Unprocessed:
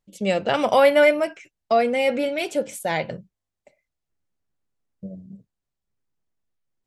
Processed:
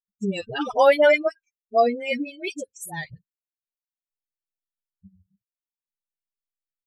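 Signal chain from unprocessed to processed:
spectral dynamics exaggerated over time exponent 3
all-pass dispersion highs, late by 72 ms, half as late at 610 Hz
level +3 dB

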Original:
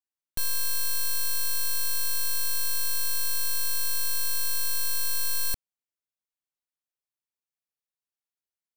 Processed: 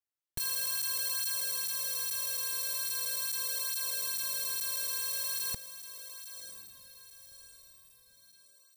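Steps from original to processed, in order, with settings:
on a send: feedback delay with all-pass diffusion 1,024 ms, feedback 41%, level −11 dB
on the sum: through-zero flanger with one copy inverted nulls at 0.4 Hz, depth 5.5 ms

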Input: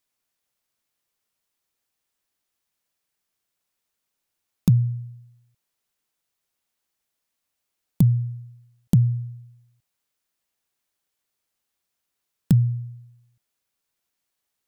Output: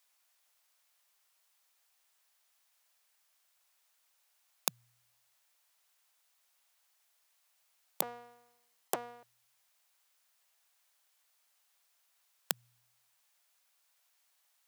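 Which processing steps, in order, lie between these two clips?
0:08.02–0:09.23: lower of the sound and its delayed copy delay 0.97 ms
high-pass filter 610 Hz 24 dB per octave
level +6.5 dB

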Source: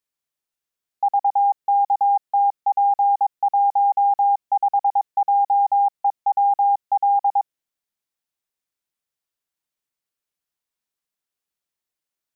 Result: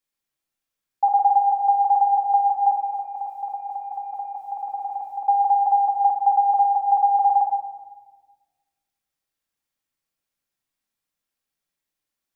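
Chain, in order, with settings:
0:02.71–0:05.24: compressor whose output falls as the input rises −30 dBFS, ratio −1
rectangular room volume 1,200 cubic metres, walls mixed, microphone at 2.2 metres
level −1.5 dB

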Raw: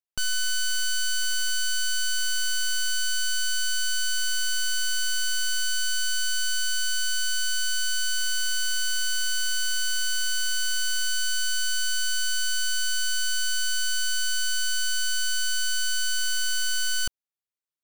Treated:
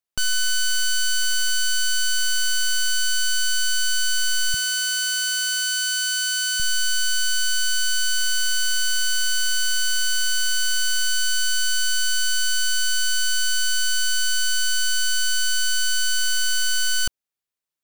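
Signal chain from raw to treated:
0:04.54–0:06.60: high-pass filter 110 Hz 24 dB per octave
level +4.5 dB

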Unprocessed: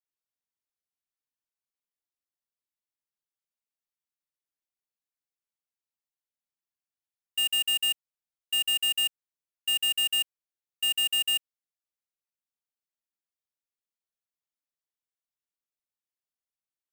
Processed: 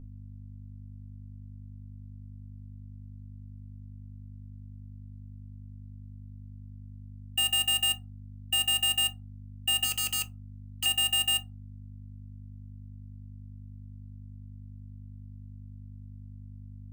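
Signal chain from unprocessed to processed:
parametric band 630 Hz +11 dB 1.7 octaves
0:09.84–0:10.86: wrap-around overflow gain 25.5 dB
mains hum 50 Hz, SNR 10 dB
on a send: convolution reverb RT60 0.30 s, pre-delay 3 ms, DRR 9 dB

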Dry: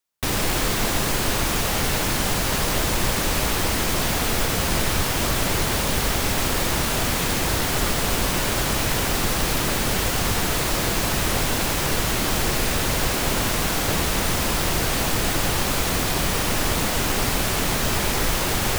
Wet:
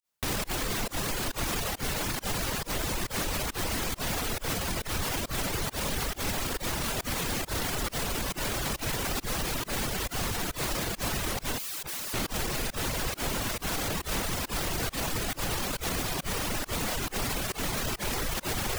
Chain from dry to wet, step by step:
brickwall limiter −19.5 dBFS, peak gain reduction 10.5 dB
fake sidechain pumping 137 BPM, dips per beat 1, −22 dB, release 104 ms
0:11.58–0:12.14: wrap-around overflow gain 29 dB
reverb reduction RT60 0.76 s

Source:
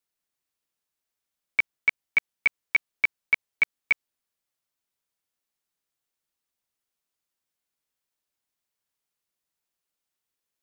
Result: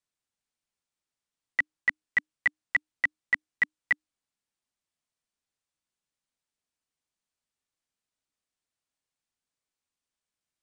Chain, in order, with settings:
downsampling to 22,050 Hz
frequency shifter −310 Hz
level −3 dB

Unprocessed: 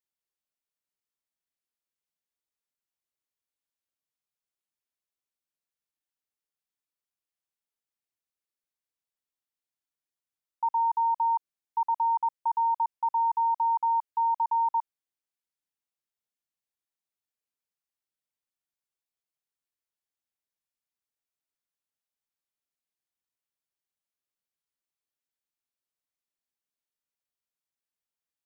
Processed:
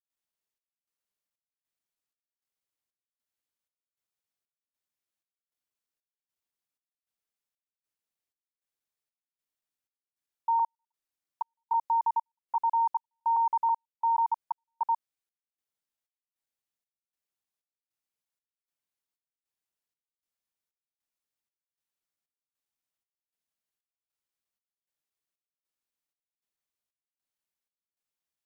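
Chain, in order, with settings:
slices reordered back to front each 163 ms, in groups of 4
gate pattern ".xxxxx.." 155 BPM −60 dB

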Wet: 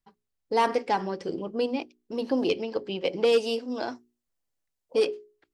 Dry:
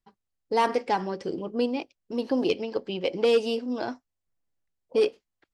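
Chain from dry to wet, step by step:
0:03.32–0:05.06: bass and treble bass −4 dB, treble +4 dB
mains-hum notches 60/120/180/240/300/360/420 Hz

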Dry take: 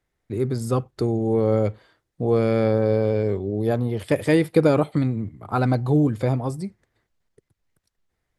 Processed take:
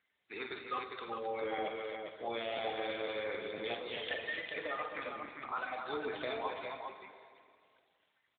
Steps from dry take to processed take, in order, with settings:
spectral magnitudes quantised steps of 30 dB
high-pass filter 1,200 Hz 12 dB per octave
high-shelf EQ 2,200 Hz +10.5 dB
downward compressor 6 to 1, threshold −36 dBFS, peak gain reduction 16 dB
0:04.16–0:05.56: high-frequency loss of the air 300 metres
multi-tap delay 43/52/255/265/404 ms −9/−9/−15/−8.5/−5.5 dB
on a send at −6.5 dB: convolution reverb RT60 2.3 s, pre-delay 6 ms
on the sum: regular buffer underruns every 0.50 s, samples 512, repeat, from 0:00.56
level +1 dB
AMR narrowband 12.2 kbit/s 8,000 Hz

